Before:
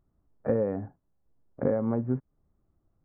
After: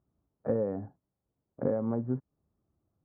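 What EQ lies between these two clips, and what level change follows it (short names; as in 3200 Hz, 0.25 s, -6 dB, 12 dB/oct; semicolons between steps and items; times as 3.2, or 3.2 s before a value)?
HPF 72 Hz; LPF 1500 Hz 12 dB/oct; -3.0 dB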